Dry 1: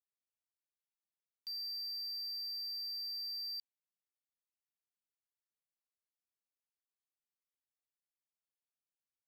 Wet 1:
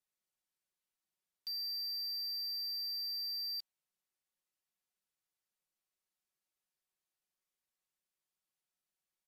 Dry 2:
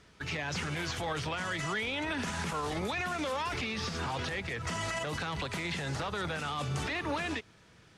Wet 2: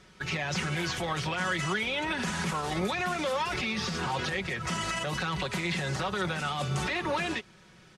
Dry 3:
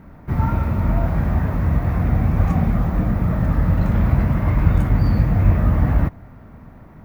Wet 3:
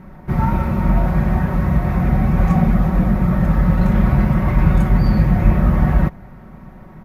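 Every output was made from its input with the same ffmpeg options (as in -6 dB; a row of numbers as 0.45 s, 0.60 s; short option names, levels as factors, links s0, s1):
-af "aecho=1:1:5.4:0.58,aresample=32000,aresample=44100,volume=1.33"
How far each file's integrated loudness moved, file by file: +2.0 LU, +3.5 LU, +2.5 LU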